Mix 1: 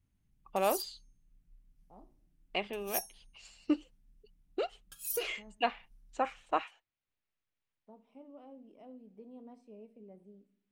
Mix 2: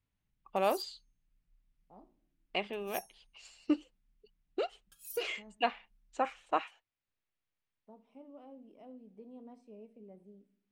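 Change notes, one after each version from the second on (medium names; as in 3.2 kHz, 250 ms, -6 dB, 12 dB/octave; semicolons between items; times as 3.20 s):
background -9.5 dB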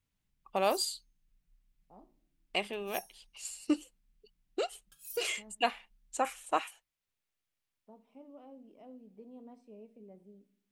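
first voice: remove distance through air 190 m; background: send on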